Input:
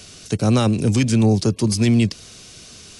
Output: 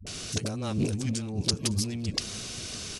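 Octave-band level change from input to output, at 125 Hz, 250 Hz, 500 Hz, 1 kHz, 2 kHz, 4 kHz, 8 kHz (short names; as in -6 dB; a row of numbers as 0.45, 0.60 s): -12.5, -14.0, -14.0, -13.5, -9.5, -2.5, -3.0 dB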